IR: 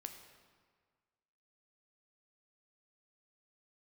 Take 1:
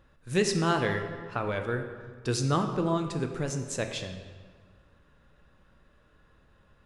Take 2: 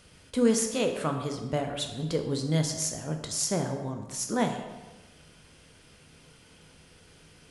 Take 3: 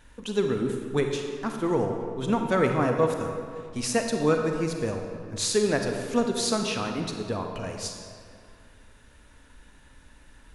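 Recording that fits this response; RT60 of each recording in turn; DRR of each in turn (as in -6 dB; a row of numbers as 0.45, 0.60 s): 1; 1.7, 1.2, 2.2 s; 5.0, 4.0, 3.5 dB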